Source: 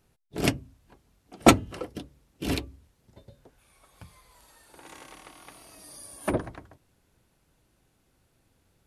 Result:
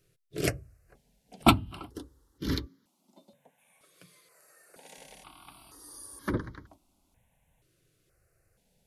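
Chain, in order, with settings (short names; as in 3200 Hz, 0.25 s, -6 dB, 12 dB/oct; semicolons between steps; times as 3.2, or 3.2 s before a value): 2.66–4.98 steep high-pass 160 Hz 36 dB/oct; step phaser 2.1 Hz 230–2600 Hz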